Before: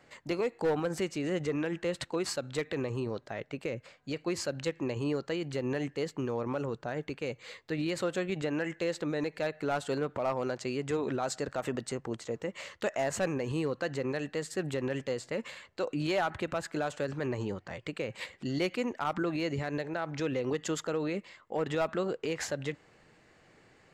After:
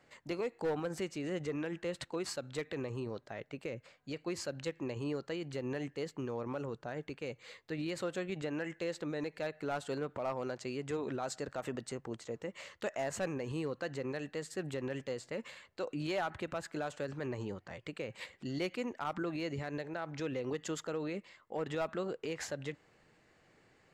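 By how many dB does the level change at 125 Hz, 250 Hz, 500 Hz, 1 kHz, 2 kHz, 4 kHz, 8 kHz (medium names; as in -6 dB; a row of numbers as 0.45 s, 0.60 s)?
-5.5 dB, -5.5 dB, -5.5 dB, -5.5 dB, -5.5 dB, -5.5 dB, -5.5 dB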